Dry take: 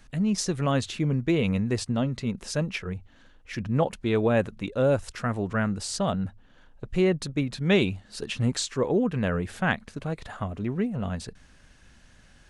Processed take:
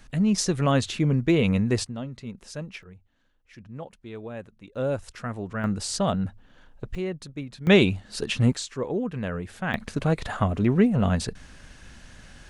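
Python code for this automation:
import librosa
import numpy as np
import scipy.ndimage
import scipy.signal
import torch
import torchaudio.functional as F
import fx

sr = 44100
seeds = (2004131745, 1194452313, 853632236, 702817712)

y = fx.gain(x, sr, db=fx.steps((0.0, 3.0), (1.87, -8.0), (2.83, -14.5), (4.75, -4.5), (5.64, 2.0), (6.95, -8.0), (7.67, 4.5), (8.53, -4.0), (9.74, 8.0)))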